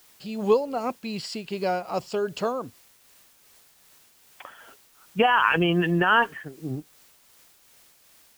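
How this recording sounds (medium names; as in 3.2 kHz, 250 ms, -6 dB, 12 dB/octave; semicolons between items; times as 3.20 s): a quantiser's noise floor 10-bit, dither triangular; tremolo triangle 2.6 Hz, depth 40%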